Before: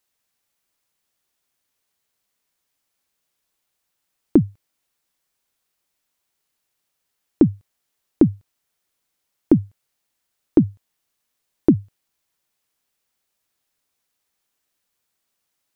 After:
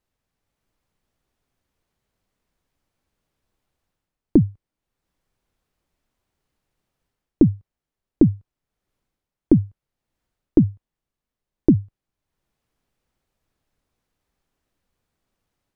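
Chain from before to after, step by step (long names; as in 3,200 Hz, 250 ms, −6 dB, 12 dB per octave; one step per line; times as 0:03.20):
spectral tilt −3.5 dB per octave
automatic gain control gain up to 3.5 dB
dynamic equaliser 1,100 Hz, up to +8 dB, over −41 dBFS, Q 1.6
level −1 dB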